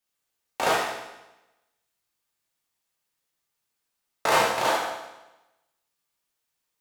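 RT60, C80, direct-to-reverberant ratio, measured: 1.0 s, 4.5 dB, -5.0 dB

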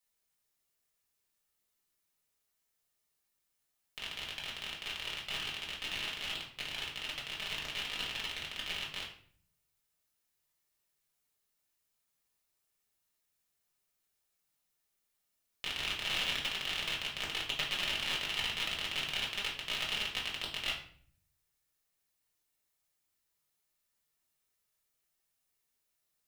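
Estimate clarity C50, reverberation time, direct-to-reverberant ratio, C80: 6.5 dB, 0.55 s, -4.5 dB, 11.0 dB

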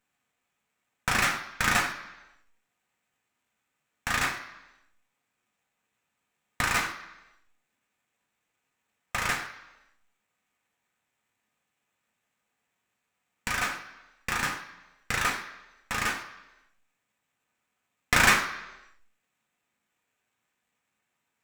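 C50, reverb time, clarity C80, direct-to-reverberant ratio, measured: 9.5 dB, 1.0 s, 11.5 dB, 0.5 dB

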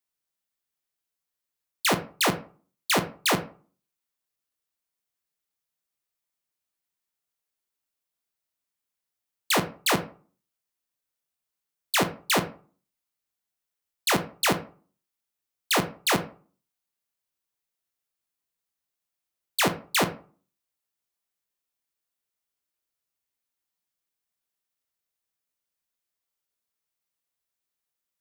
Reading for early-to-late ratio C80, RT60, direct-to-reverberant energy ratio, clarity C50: 17.5 dB, 0.40 s, 7.0 dB, 13.5 dB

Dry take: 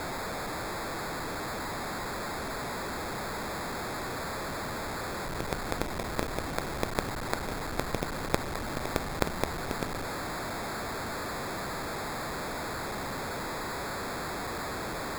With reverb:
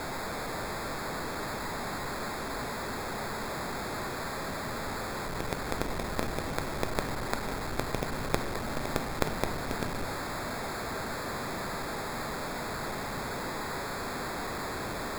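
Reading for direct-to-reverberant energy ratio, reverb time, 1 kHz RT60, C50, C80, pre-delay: 7.0 dB, 2.2 s, 2.0 s, 8.5 dB, 10.0 dB, 4 ms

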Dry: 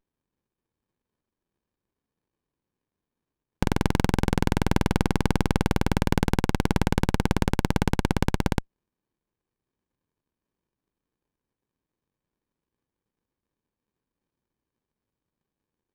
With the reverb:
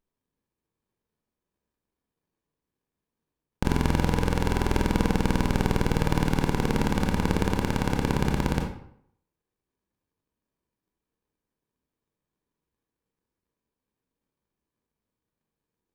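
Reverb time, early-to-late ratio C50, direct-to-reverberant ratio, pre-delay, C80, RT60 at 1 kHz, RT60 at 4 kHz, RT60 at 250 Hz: 0.65 s, 5.0 dB, 1.0 dB, 22 ms, 9.0 dB, 0.65 s, 0.45 s, 0.70 s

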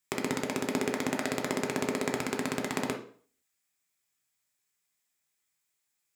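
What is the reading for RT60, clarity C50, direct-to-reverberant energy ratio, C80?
0.50 s, 9.0 dB, 2.0 dB, 14.5 dB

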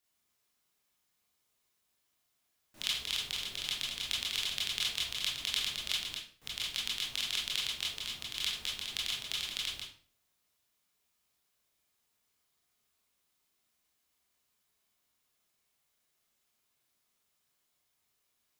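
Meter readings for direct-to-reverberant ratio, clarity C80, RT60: -5.0 dB, 9.0 dB, 0.50 s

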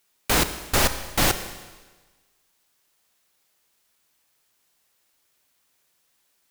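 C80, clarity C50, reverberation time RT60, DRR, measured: 12.5 dB, 11.0 dB, 1.3 s, 9.5 dB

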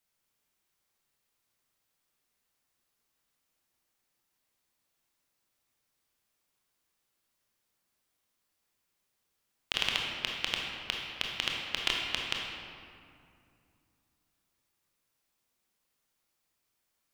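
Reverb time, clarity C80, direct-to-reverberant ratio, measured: 2.5 s, 2.0 dB, -1.5 dB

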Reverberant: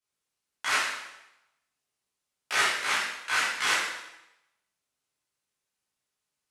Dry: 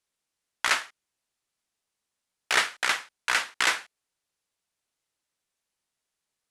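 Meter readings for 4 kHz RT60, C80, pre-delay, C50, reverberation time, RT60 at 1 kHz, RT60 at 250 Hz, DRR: 0.85 s, 4.0 dB, 6 ms, 1.0 dB, 0.90 s, 0.95 s, 0.85 s, -10.5 dB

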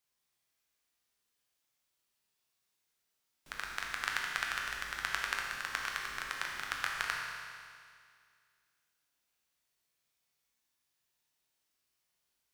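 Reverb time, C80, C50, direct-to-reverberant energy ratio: 2.1 s, 2.5 dB, 1.0 dB, -1.0 dB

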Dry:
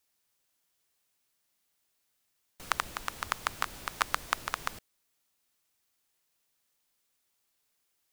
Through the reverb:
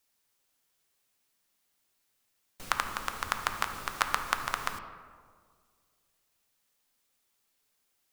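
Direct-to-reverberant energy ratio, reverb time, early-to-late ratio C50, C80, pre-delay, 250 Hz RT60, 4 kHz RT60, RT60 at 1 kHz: 6.0 dB, 1.9 s, 8.0 dB, 10.0 dB, 4 ms, 2.1 s, 0.95 s, 1.7 s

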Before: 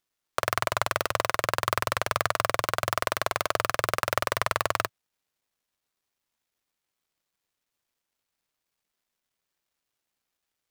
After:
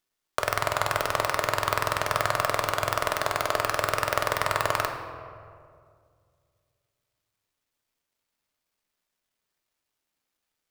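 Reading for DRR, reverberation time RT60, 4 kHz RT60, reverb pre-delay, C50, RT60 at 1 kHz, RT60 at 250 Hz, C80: 4.5 dB, 2.2 s, 1.1 s, 3 ms, 7.0 dB, 2.0 s, 2.4 s, 8.0 dB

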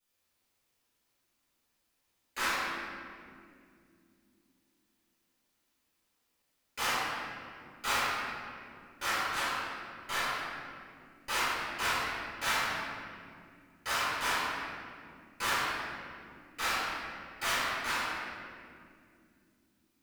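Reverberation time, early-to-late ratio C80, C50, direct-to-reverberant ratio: 2.5 s, -1.5 dB, -4.0 dB, -14.5 dB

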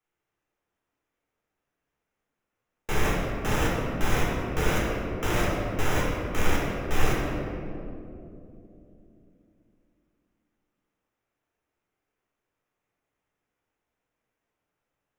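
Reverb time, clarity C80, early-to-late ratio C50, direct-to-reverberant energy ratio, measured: 2.9 s, 1.0 dB, -1.0 dB, -5.5 dB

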